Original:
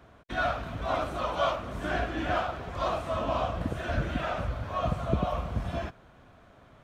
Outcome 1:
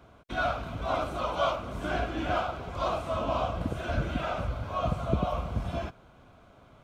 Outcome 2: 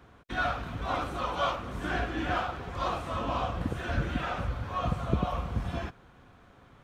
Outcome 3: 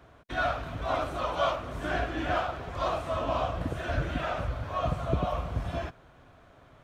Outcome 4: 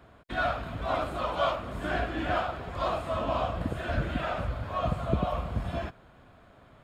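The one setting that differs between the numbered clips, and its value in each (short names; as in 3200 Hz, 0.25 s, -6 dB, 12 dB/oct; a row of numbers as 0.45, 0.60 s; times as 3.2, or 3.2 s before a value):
notch, frequency: 1800, 630, 210, 5900 Hz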